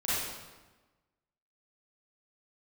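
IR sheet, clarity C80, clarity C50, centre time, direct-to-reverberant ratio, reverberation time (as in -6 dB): 0.0 dB, -5.0 dB, 105 ms, -11.5 dB, 1.2 s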